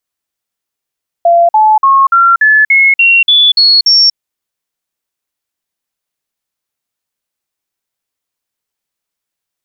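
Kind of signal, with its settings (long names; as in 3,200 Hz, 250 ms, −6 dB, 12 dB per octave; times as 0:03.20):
stepped sweep 685 Hz up, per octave 3, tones 10, 0.24 s, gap 0.05 s −3.5 dBFS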